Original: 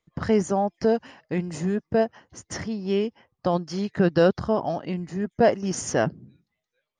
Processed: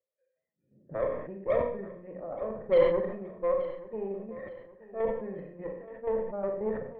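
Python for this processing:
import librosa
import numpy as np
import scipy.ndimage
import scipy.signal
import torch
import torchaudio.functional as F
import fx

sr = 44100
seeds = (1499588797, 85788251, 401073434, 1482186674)

p1 = np.flip(x).copy()
p2 = scipy.signal.sosfilt(scipy.signal.butter(2, 100.0, 'highpass', fs=sr, output='sos'), p1)
p3 = fx.peak_eq(p2, sr, hz=3200.0, db=-10.5, octaves=1.4)
p4 = fx.hum_notches(p3, sr, base_hz=60, count=9)
p5 = fx.tremolo_shape(p4, sr, shape='saw_down', hz=5.6, depth_pct=55)
p6 = fx.cheby_harmonics(p5, sr, harmonics=(3, 5), levels_db=(-17, -19), full_scale_db=-10.0)
p7 = fx.formant_cascade(p6, sr, vowel='e')
p8 = fx.cheby_harmonics(p7, sr, harmonics=(8,), levels_db=(-22,), full_scale_db=-17.0)
p9 = fx.air_absorb(p8, sr, metres=310.0)
p10 = p9 + fx.echo_feedback(p9, sr, ms=875, feedback_pct=39, wet_db=-17, dry=0)
p11 = fx.rev_schroeder(p10, sr, rt60_s=0.53, comb_ms=29, drr_db=4.0)
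p12 = fx.sustainer(p11, sr, db_per_s=67.0)
y = p12 * 10.0 ** (4.0 / 20.0)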